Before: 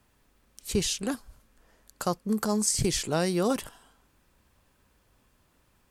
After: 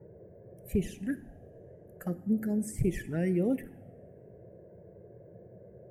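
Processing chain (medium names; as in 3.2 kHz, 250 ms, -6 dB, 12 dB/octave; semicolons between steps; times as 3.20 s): expander on every frequency bin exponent 1.5; treble shelf 5.8 kHz -5 dB; in parallel at -1.5 dB: compression, threshold -41 dBFS, peak gain reduction 17.5 dB; on the sum: band noise 82–660 Hz -46 dBFS; FFT filter 340 Hz 0 dB, 730 Hz -8 dB, 1.1 kHz -22 dB, 1.8 kHz +5 dB, 4.3 kHz -26 dB, 12 kHz -1 dB; touch-sensitive flanger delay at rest 2.3 ms, full sweep at -24 dBFS; two-slope reverb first 0.73 s, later 2.8 s, from -19 dB, DRR 13.5 dB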